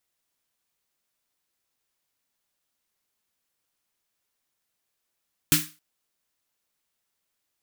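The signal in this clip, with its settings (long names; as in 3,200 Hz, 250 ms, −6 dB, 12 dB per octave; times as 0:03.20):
synth snare length 0.27 s, tones 160 Hz, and 300 Hz, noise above 1,300 Hz, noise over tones 5 dB, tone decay 0.27 s, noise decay 0.31 s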